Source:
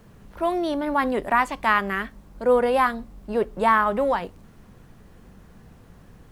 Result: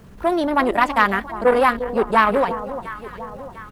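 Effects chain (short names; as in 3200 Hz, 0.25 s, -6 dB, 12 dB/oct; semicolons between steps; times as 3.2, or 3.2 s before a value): tempo 1.7×; on a send: echo with dull and thin repeats by turns 0.35 s, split 1100 Hz, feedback 69%, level -12 dB; on the sum: core saturation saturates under 1000 Hz; gain +6 dB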